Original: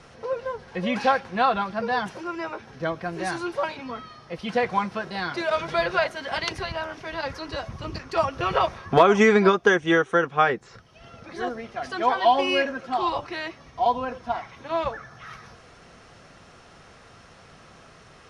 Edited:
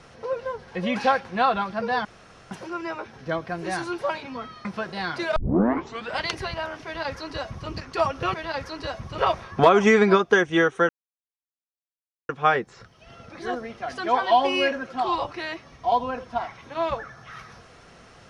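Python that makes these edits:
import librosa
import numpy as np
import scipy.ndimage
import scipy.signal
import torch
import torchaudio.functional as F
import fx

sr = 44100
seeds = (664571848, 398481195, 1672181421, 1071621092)

y = fx.edit(x, sr, fx.insert_room_tone(at_s=2.05, length_s=0.46),
    fx.cut(start_s=4.19, length_s=0.64),
    fx.tape_start(start_s=5.54, length_s=0.83),
    fx.duplicate(start_s=7.03, length_s=0.84, to_s=8.52),
    fx.insert_silence(at_s=10.23, length_s=1.4), tone=tone)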